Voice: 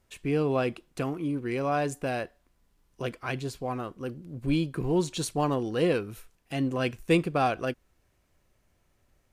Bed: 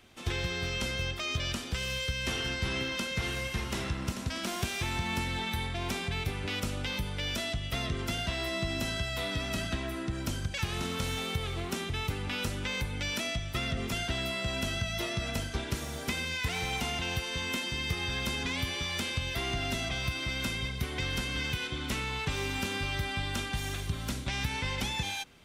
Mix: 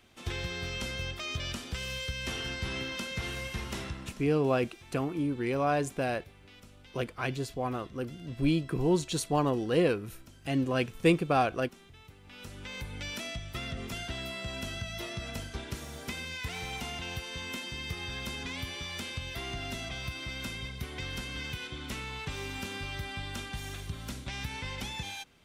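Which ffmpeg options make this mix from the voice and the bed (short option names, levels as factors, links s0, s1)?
-filter_complex "[0:a]adelay=3950,volume=0.944[s0];[1:a]volume=4.22,afade=t=out:st=3.75:d=0.61:silence=0.133352,afade=t=in:st=12.23:d=0.73:silence=0.16788[s1];[s0][s1]amix=inputs=2:normalize=0"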